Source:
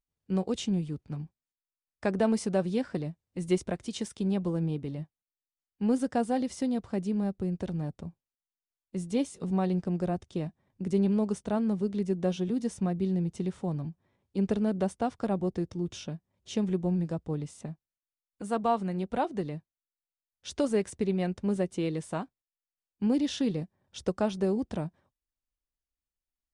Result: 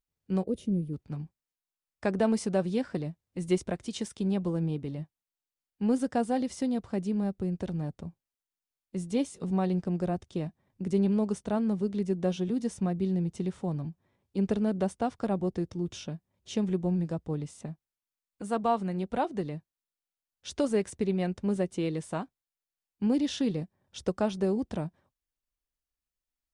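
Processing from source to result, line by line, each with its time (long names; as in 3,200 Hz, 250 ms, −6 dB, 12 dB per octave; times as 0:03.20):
0:00.43–0:00.93: gain on a spectral selection 660–9,100 Hz −16 dB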